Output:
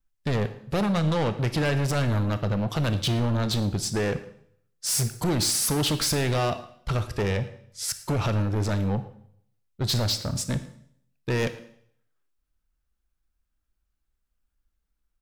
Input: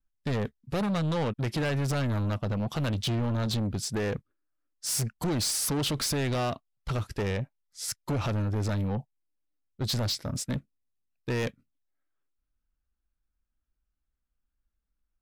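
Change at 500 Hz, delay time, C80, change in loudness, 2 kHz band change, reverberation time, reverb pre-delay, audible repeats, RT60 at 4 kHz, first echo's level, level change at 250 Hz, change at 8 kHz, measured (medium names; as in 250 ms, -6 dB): +4.0 dB, 112 ms, 15.0 dB, +4.0 dB, +4.5 dB, 0.65 s, 25 ms, 1, 0.60 s, -21.0 dB, +3.5 dB, +4.5 dB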